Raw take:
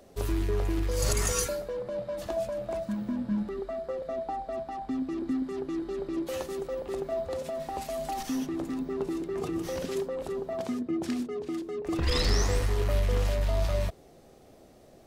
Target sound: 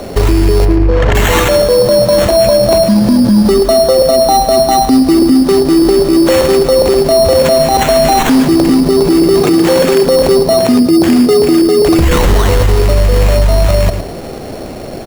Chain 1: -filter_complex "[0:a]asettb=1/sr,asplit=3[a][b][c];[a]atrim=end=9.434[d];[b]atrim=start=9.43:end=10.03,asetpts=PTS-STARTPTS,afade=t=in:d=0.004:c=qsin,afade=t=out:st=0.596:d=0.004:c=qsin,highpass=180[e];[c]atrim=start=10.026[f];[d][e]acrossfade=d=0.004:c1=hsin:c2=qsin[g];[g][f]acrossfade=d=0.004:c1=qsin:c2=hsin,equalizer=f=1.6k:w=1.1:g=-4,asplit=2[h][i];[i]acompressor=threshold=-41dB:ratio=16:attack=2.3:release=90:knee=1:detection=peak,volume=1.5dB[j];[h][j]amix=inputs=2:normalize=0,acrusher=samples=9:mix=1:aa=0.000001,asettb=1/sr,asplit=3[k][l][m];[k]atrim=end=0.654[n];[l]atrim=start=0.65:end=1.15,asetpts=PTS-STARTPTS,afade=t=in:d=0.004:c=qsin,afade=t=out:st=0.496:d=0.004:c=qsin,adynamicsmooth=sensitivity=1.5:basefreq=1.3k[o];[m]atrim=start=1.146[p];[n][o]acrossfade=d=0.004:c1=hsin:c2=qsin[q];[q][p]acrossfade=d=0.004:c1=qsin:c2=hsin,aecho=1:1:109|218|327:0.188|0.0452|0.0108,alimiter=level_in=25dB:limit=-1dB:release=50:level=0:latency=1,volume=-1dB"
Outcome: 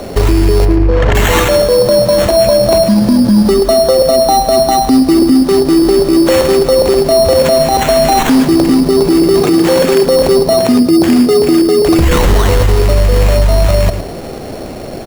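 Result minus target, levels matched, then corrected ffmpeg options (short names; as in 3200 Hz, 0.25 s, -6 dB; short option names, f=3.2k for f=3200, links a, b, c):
compressor: peak gain reduction +6 dB
-filter_complex "[0:a]asettb=1/sr,asplit=3[a][b][c];[a]atrim=end=9.434[d];[b]atrim=start=9.43:end=10.03,asetpts=PTS-STARTPTS,afade=t=in:d=0.004:c=qsin,afade=t=out:st=0.596:d=0.004:c=qsin,highpass=180[e];[c]atrim=start=10.026[f];[d][e]acrossfade=d=0.004:c1=hsin:c2=qsin[g];[g][f]acrossfade=d=0.004:c1=qsin:c2=hsin,equalizer=f=1.6k:w=1.1:g=-4,asplit=2[h][i];[i]acompressor=threshold=-34.5dB:ratio=16:attack=2.3:release=90:knee=1:detection=peak,volume=1.5dB[j];[h][j]amix=inputs=2:normalize=0,acrusher=samples=9:mix=1:aa=0.000001,asettb=1/sr,asplit=3[k][l][m];[k]atrim=end=0.654[n];[l]atrim=start=0.65:end=1.15,asetpts=PTS-STARTPTS,afade=t=in:d=0.004:c=qsin,afade=t=out:st=0.496:d=0.004:c=qsin,adynamicsmooth=sensitivity=1.5:basefreq=1.3k[o];[m]atrim=start=1.146[p];[n][o]acrossfade=d=0.004:c1=hsin:c2=qsin[q];[q][p]acrossfade=d=0.004:c1=qsin:c2=hsin,aecho=1:1:109|218|327:0.188|0.0452|0.0108,alimiter=level_in=25dB:limit=-1dB:release=50:level=0:latency=1,volume=-1dB"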